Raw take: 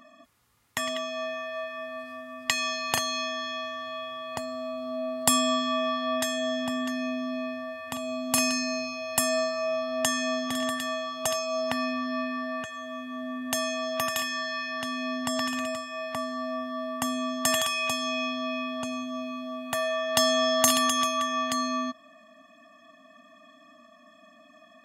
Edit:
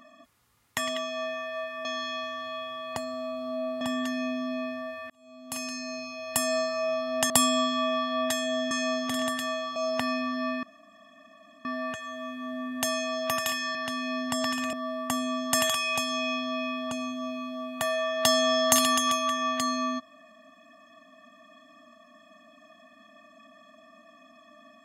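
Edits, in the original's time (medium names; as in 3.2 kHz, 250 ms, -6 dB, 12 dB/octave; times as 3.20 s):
1.85–3.26 s: delete
5.22–6.63 s: move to 10.12 s
7.92–9.54 s: fade in
11.17–11.48 s: delete
12.35 s: insert room tone 1.02 s
14.45–14.70 s: delete
15.68–16.65 s: delete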